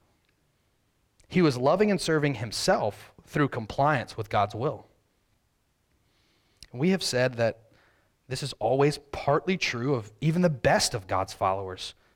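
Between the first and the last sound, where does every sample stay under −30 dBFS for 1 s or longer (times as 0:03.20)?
0:04.74–0:06.63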